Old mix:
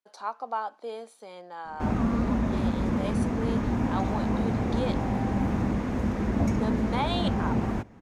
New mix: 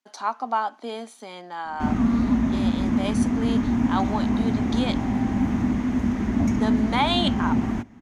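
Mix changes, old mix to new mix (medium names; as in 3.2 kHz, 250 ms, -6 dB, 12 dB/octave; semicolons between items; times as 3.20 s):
speech +7.0 dB; master: add graphic EQ with 31 bands 250 Hz +10 dB, 500 Hz -10 dB, 2 kHz +4 dB, 3.15 kHz +4 dB, 6.3 kHz +5 dB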